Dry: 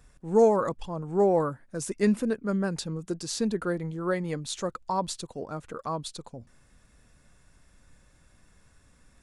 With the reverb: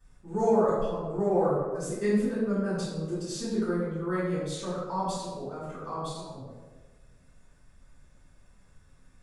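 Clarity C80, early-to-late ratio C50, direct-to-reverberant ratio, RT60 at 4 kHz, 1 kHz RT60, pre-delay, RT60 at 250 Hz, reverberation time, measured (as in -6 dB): 2.0 dB, -1.5 dB, -14.0 dB, 0.70 s, 1.2 s, 3 ms, 1.4 s, 1.4 s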